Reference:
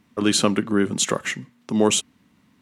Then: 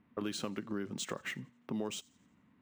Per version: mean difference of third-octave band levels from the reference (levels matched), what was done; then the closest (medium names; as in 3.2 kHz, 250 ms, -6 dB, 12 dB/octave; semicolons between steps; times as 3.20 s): 3.5 dB: level-controlled noise filter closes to 2.2 kHz, open at -16.5 dBFS; compression 6:1, threshold -27 dBFS, peak gain reduction 14 dB; on a send: feedback echo behind a high-pass 88 ms, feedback 46%, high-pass 3.9 kHz, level -23 dB; on the sum: decimation joined by straight lines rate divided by 3×; trim -7.5 dB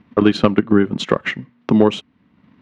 6.0 dB: in parallel at 0 dB: compression, threshold -31 dBFS, peak gain reduction 17.5 dB; on the sum: transient shaper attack +8 dB, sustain -5 dB; overload inside the chain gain 3 dB; distance through air 320 m; trim +2 dB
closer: first